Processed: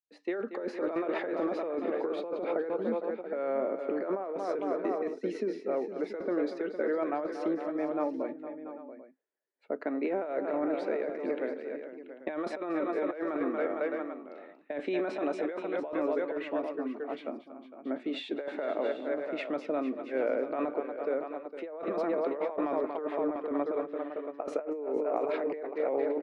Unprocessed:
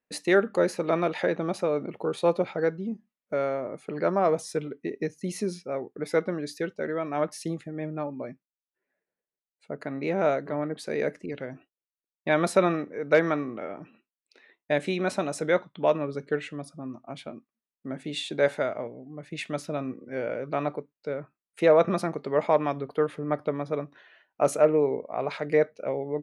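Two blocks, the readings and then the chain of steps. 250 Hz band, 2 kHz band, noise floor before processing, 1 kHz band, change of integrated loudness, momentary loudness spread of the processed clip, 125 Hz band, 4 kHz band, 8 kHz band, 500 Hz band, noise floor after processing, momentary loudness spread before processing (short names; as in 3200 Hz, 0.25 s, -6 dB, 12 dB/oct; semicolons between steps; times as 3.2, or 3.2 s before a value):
-2.5 dB, -8.5 dB, under -85 dBFS, -5.5 dB, -5.5 dB, 8 LU, -20.0 dB, -9.5 dB, under -20 dB, -5.0 dB, -52 dBFS, 15 LU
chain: opening faded in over 0.71 s; steep high-pass 250 Hz 36 dB/oct; high shelf 6200 Hz -12 dB; tapped delay 0.233/0.457/0.682/0.792 s -13.5/-14/-13.5/-18 dB; negative-ratio compressor -30 dBFS, ratio -1; tape spacing loss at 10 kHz 24 dB; notch 6500 Hz, Q 24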